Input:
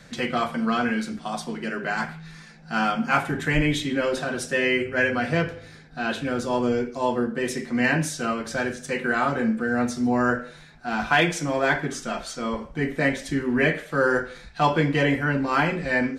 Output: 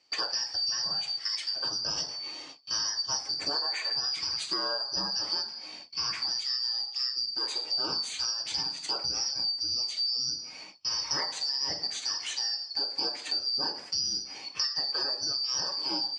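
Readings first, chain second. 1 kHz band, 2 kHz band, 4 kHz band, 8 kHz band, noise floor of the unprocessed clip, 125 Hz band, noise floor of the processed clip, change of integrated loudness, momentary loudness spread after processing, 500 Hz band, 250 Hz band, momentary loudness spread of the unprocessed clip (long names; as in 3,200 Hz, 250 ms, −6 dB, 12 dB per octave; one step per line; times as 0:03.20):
−15.0 dB, −18.0 dB, +9.5 dB, +3.5 dB, −47 dBFS, −24.5 dB, −45 dBFS, −4.5 dB, 4 LU, −20.0 dB, −24.0 dB, 9 LU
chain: band-splitting scrambler in four parts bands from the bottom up 2341
high-pass filter 940 Hz 6 dB per octave
high-shelf EQ 6,000 Hz −6 dB
downward compressor 6 to 1, threshold −34 dBFS, peak gain reduction 15.5 dB
low-pass filter 7,900 Hz 24 dB per octave
noise gate with hold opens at −40 dBFS
level +5.5 dB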